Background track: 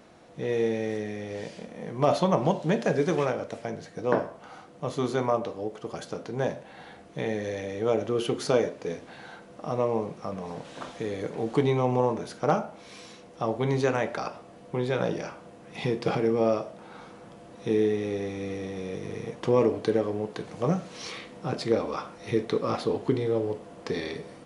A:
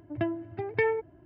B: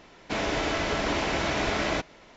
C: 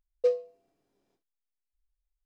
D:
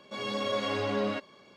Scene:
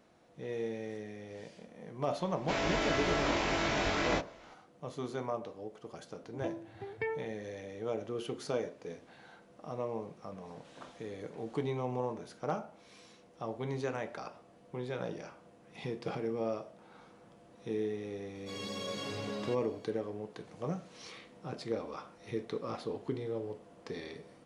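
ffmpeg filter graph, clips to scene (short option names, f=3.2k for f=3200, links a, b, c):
-filter_complex "[0:a]volume=-11dB[a];[2:a]asplit=2[b][c];[c]adelay=21,volume=-2.5dB[d];[b][d]amix=inputs=2:normalize=0[e];[4:a]bass=f=250:g=5,treble=f=4k:g=14[f];[e]atrim=end=2.36,asetpts=PTS-STARTPTS,volume=-6.5dB,afade=t=in:d=0.004:c=hsin,afade=t=out:st=2.356:d=0.004:c=hsin,adelay=2180[g];[1:a]atrim=end=1.25,asetpts=PTS-STARTPTS,volume=-10dB,afade=t=in:d=0.004:c=hsin,afade=t=out:st=1.246:d=0.004:c=hsin,adelay=6230[h];[f]atrim=end=1.56,asetpts=PTS-STARTPTS,volume=-11.5dB,afade=t=in:d=0.004:c=hsin,afade=t=out:st=1.556:d=0.004:c=hsin,adelay=18350[i];[a][g][h][i]amix=inputs=4:normalize=0"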